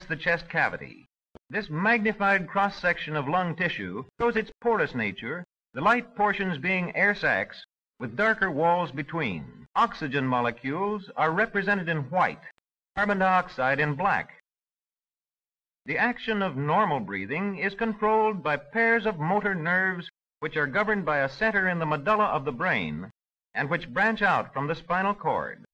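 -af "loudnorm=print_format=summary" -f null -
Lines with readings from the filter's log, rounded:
Input Integrated:    -26.2 LUFS
Input True Peak:     -11.2 dBTP
Input LRA:             2.2 LU
Input Threshold:     -36.6 LUFS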